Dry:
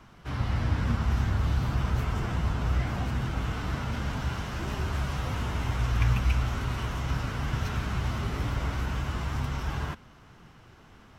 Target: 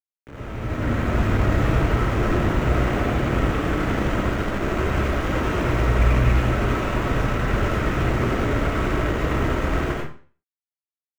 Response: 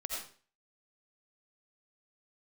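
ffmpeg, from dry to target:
-filter_complex "[0:a]acrusher=bits=4:mix=0:aa=0.000001,acrossover=split=7400[link_01][link_02];[link_02]acompressor=threshold=-48dB:ratio=4:attack=1:release=60[link_03];[link_01][link_03]amix=inputs=2:normalize=0[link_04];[1:a]atrim=start_sample=2205[link_05];[link_04][link_05]afir=irnorm=-1:irlink=0,aexciter=amount=3.4:drive=1.4:freq=6200,acrossover=split=510 2400:gain=0.178 1 0.0891[link_06][link_07][link_08];[link_06][link_07][link_08]amix=inputs=3:normalize=0,dynaudnorm=framelen=130:gausssize=13:maxgain=14dB,lowshelf=frequency=510:width_type=q:width=1.5:gain=13.5,volume=-6dB"

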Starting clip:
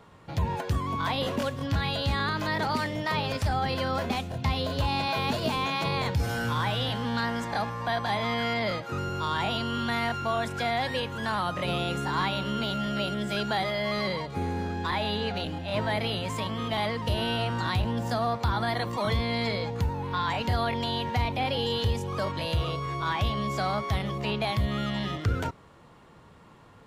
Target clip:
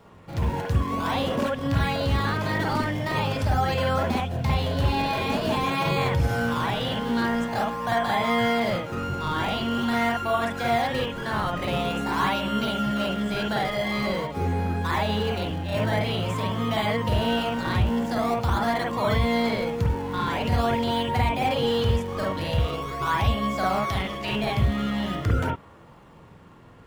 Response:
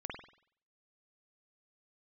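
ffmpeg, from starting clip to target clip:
-filter_complex "[0:a]asettb=1/sr,asplit=3[link_01][link_02][link_03];[link_01]atrim=end=23.794[link_04];[link_02]atrim=start=23.79:end=24.31,asetpts=PTS-STARTPTS,afade=type=in:duration=0.004:curve=qsin,afade=type=out:start_time=0.516:duration=0.004:curve=qsin,tiltshelf=frequency=780:gain=-5[link_05];[link_03]atrim=start=24.306[link_06];[link_04][link_05]acrossfade=duration=0.004:curve1=hsin:curve2=qsin[link_07];[link_07][link_06]acrossfade=duration=0.004:curve1=qsin:curve2=hsin,asplit=2[link_08][link_09];[link_09]acrusher=samples=20:mix=1:aa=0.000001:lfo=1:lforange=32:lforate=0.46,volume=-7dB[link_10];[link_08][link_10]amix=inputs=2:normalize=0[link_11];[1:a]atrim=start_sample=2205,atrim=end_sample=3528[link_12];[link_11][link_12]afir=irnorm=-1:irlink=0,volume=2.5dB"

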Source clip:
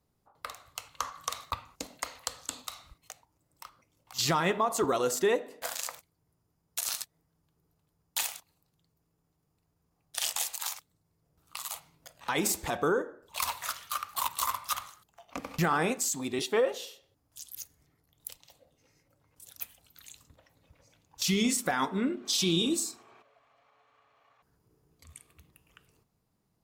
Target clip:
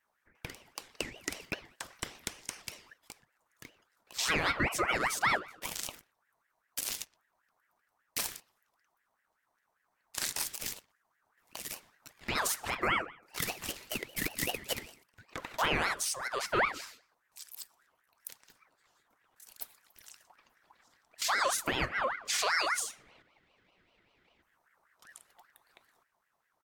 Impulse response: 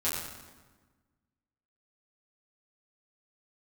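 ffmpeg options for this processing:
-filter_complex "[0:a]asplit=2[link_01][link_02];[link_02]adelay=120,highpass=300,lowpass=3400,asoftclip=type=hard:threshold=-23dB,volume=-23dB[link_03];[link_01][link_03]amix=inputs=2:normalize=0,aeval=exprs='val(0)*sin(2*PI*1300*n/s+1300*0.4/5.1*sin(2*PI*5.1*n/s))':channel_layout=same"

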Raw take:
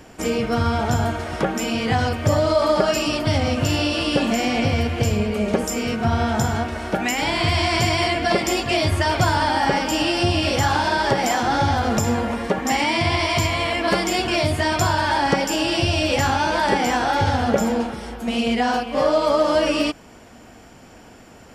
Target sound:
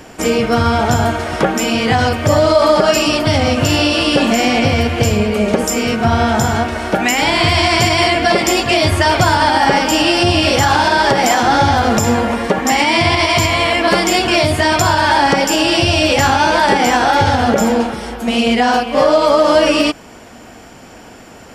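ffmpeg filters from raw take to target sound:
ffmpeg -i in.wav -af "lowshelf=frequency=190:gain=-4.5,alimiter=level_in=9.5dB:limit=-1dB:release=50:level=0:latency=1,volume=-1dB" out.wav

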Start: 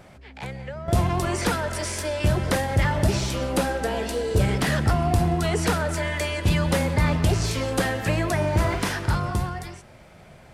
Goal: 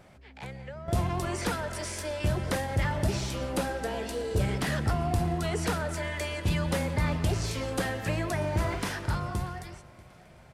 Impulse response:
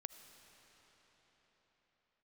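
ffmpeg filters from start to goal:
-af "aecho=1:1:638|1276|1914:0.0794|0.031|0.0121,volume=-6.5dB"

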